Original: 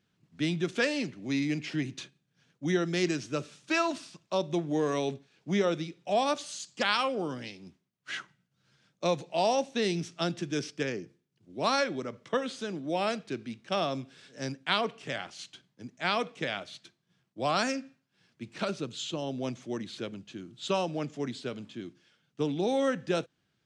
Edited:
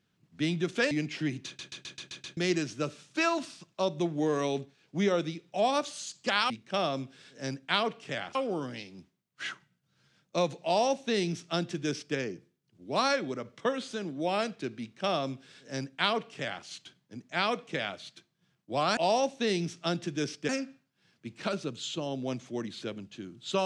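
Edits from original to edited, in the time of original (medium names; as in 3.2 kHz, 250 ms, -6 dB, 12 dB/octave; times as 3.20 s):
0.91–1.44 s: delete
1.99 s: stutter in place 0.13 s, 7 plays
9.32–10.84 s: copy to 17.65 s
13.48–15.33 s: copy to 7.03 s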